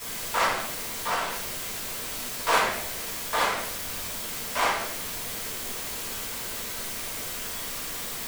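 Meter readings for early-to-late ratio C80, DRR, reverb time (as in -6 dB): 5.0 dB, -10.5 dB, 0.80 s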